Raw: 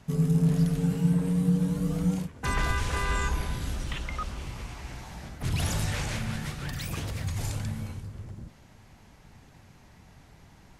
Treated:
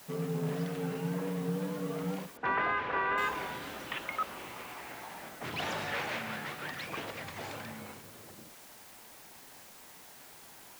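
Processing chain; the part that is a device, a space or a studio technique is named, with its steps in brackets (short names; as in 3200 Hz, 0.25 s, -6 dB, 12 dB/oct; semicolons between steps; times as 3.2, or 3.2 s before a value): wax cylinder (BPF 390–2800 Hz; wow and flutter; white noise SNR 17 dB); 2.37–3.18 LPF 2300 Hz 12 dB/oct; gain +2.5 dB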